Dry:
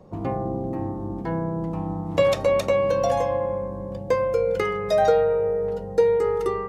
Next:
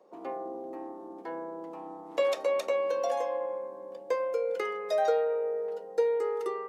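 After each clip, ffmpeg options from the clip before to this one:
-af "highpass=f=340:w=0.5412,highpass=f=340:w=1.3066,volume=-7.5dB"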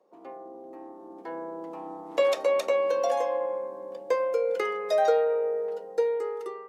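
-af "dynaudnorm=f=490:g=5:m=10dB,volume=-6dB"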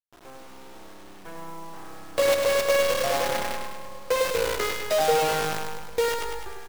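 -filter_complex "[0:a]acrusher=bits=5:dc=4:mix=0:aa=0.000001,asplit=2[a][b];[b]aecho=0:1:102|204|306|408|510|612|714|816:0.562|0.326|0.189|0.11|0.0636|0.0369|0.0214|0.0124[c];[a][c]amix=inputs=2:normalize=0"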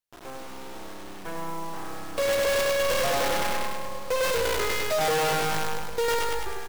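-af "volume=28dB,asoftclip=hard,volume=-28dB,volume=5.5dB"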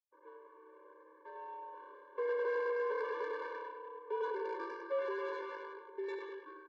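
-af "highpass=f=550:t=q:w=0.5412,highpass=f=550:t=q:w=1.307,lowpass=f=2k:t=q:w=0.5176,lowpass=f=2k:t=q:w=0.7071,lowpass=f=2k:t=q:w=1.932,afreqshift=-77,adynamicsmooth=sensitivity=1.5:basefreq=1.1k,afftfilt=real='re*eq(mod(floor(b*sr/1024/300),2),1)':imag='im*eq(mod(floor(b*sr/1024/300),2),1)':win_size=1024:overlap=0.75,volume=-6.5dB"

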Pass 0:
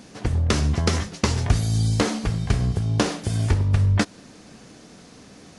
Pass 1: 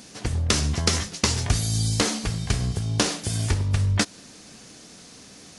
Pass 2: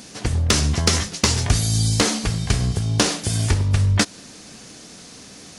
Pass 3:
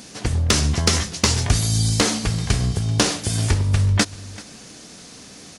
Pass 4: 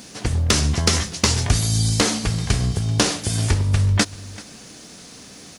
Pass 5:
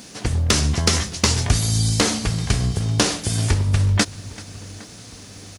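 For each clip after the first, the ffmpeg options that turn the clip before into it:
-af "highshelf=f=2.7k:g=11.5,volume=-3.5dB"
-af "acontrast=40,volume=-1dB"
-af "aecho=1:1:386:0.1"
-af "acrusher=bits=9:mix=0:aa=0.000001"
-filter_complex "[0:a]asplit=2[a][b];[b]adelay=810,lowpass=f=2k:p=1,volume=-21dB,asplit=2[c][d];[d]adelay=810,lowpass=f=2k:p=1,volume=0.49,asplit=2[e][f];[f]adelay=810,lowpass=f=2k:p=1,volume=0.49,asplit=2[g][h];[h]adelay=810,lowpass=f=2k:p=1,volume=0.49[i];[a][c][e][g][i]amix=inputs=5:normalize=0"

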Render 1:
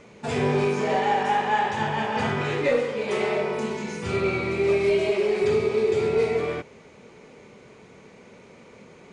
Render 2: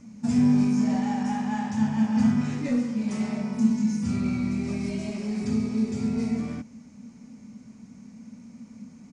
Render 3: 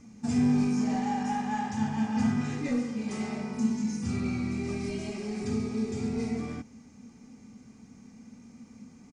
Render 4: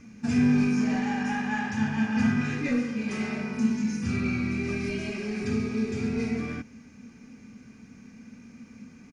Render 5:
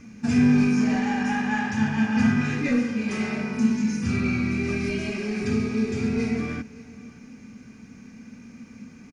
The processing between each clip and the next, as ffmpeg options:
-af "firequalizer=gain_entry='entry(160,0);entry(230,15);entry(370,-20);entry(680,-11);entry(3500,-14);entry(5400,2);entry(10000,-3)':delay=0.05:min_phase=1"
-af "aecho=1:1:2.5:0.44,volume=-1.5dB"
-af "equalizer=f=800:t=o:w=0.33:g=-6,equalizer=f=1.6k:t=o:w=0.33:g=9,equalizer=f=2.5k:t=o:w=0.33:g=8,equalizer=f=8k:t=o:w=0.33:g=-10,volume=2.5dB"
-af "aecho=1:1:574:0.0891,volume=3.5dB"

